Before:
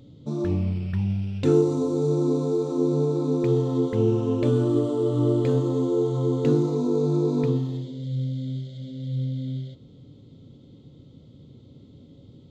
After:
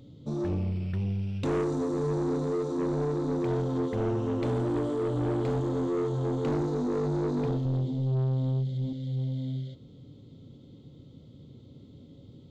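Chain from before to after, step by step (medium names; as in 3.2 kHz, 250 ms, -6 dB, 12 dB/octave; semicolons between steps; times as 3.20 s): 7.65–8.93 s: bass shelf 360 Hz +11 dB; saturation -23 dBFS, distortion -10 dB; trim -1.5 dB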